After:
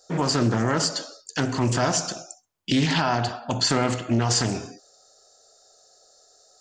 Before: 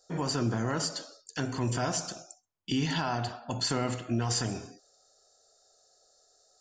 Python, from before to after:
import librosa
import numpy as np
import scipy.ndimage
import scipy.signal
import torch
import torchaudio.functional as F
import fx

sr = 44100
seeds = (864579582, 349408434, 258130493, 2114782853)

y = fx.low_shelf(x, sr, hz=90.0, db=-5.0)
y = fx.doppler_dist(y, sr, depth_ms=0.26)
y = y * 10.0 ** (8.5 / 20.0)